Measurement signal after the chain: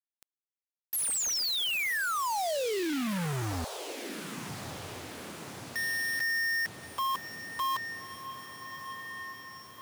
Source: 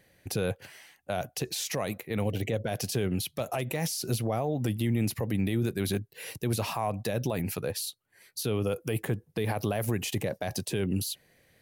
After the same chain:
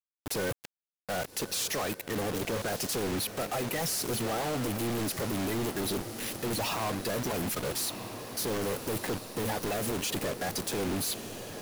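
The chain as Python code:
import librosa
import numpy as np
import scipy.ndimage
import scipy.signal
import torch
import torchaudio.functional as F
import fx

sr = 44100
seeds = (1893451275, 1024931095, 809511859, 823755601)

y = fx.spec_quant(x, sr, step_db=30)
y = fx.low_shelf(y, sr, hz=150.0, db=-8.0)
y = fx.quant_companded(y, sr, bits=2)
y = fx.echo_diffused(y, sr, ms=1257, feedback_pct=63, wet_db=-14)
y = 10.0 ** (-28.0 / 20.0) * np.tanh(y / 10.0 ** (-28.0 / 20.0))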